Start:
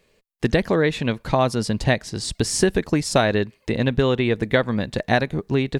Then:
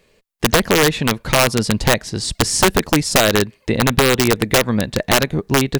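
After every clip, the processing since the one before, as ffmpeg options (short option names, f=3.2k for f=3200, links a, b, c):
-af "aeval=exprs='(mod(3.16*val(0)+1,2)-1)/3.16':c=same,volume=5dB"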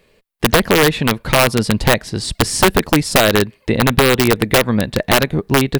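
-af "equalizer=f=6.5k:t=o:w=0.72:g=-6,volume=2dB"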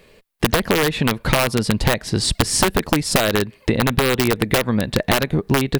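-af "acompressor=threshold=-19dB:ratio=10,volume=5dB"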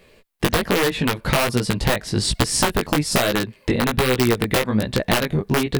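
-af "flanger=delay=15.5:depth=5.5:speed=1.2,volume=1.5dB"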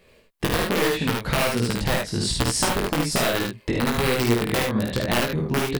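-af "aecho=1:1:51|76:0.596|0.631,volume=-5dB"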